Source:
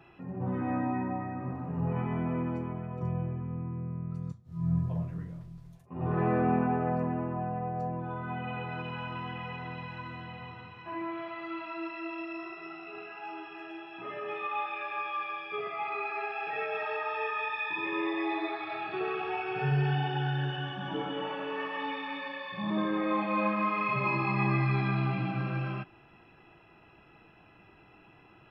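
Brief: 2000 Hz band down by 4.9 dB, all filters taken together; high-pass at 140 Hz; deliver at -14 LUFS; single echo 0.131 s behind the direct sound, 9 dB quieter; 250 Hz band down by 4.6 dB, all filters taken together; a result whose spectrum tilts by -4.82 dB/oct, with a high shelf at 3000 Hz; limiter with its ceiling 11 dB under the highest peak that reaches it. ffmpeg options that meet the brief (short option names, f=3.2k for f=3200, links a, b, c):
-af "highpass=140,equalizer=f=250:t=o:g=-5.5,equalizer=f=2k:t=o:g=-8.5,highshelf=f=3k:g=4,alimiter=level_in=5.5dB:limit=-24dB:level=0:latency=1,volume=-5.5dB,aecho=1:1:131:0.355,volume=24.5dB"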